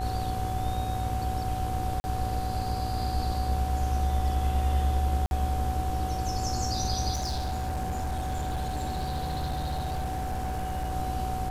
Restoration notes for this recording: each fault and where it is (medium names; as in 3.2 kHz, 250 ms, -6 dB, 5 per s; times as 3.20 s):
buzz 60 Hz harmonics 29 -34 dBFS
whine 750 Hz -32 dBFS
2.00–2.04 s: dropout 40 ms
5.26–5.31 s: dropout 51 ms
7.13–10.95 s: clipped -27 dBFS